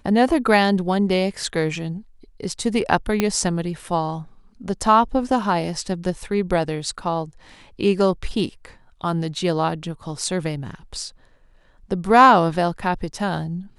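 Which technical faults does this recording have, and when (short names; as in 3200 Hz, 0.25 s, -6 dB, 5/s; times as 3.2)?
3.2 pop -5 dBFS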